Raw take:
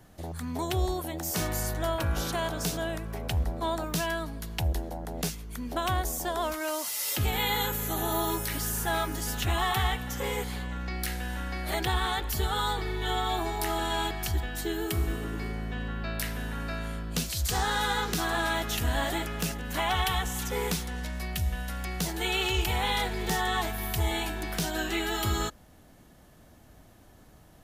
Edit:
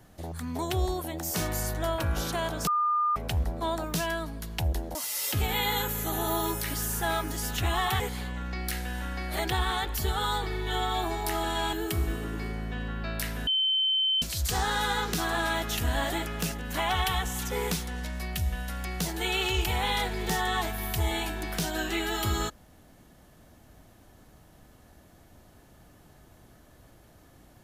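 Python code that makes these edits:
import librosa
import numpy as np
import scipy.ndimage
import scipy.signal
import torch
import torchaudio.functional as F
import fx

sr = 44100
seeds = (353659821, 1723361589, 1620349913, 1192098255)

y = fx.edit(x, sr, fx.bleep(start_s=2.67, length_s=0.49, hz=1210.0, db=-22.5),
    fx.cut(start_s=4.95, length_s=1.84),
    fx.cut(start_s=9.84, length_s=0.51),
    fx.cut(start_s=14.08, length_s=0.65),
    fx.bleep(start_s=16.47, length_s=0.75, hz=3080.0, db=-22.5), tone=tone)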